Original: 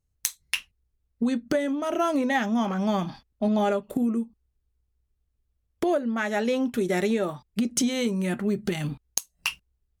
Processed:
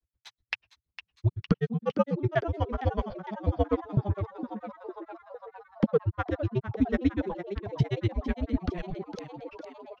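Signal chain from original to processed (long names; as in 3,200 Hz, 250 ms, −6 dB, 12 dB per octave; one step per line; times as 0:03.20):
drawn EQ curve 130 Hz 0 dB, 350 Hz +6 dB, 5,000 Hz −5 dB, 8,700 Hz −29 dB
granular cloud 62 ms, grains 8.1 per second, spray 10 ms, pitch spread up and down by 0 semitones
high-pass filter 49 Hz 6 dB per octave
high-shelf EQ 12,000 Hz −5 dB
echo with shifted repeats 457 ms, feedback 65%, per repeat +120 Hz, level −11.5 dB
frequency shifter −130 Hz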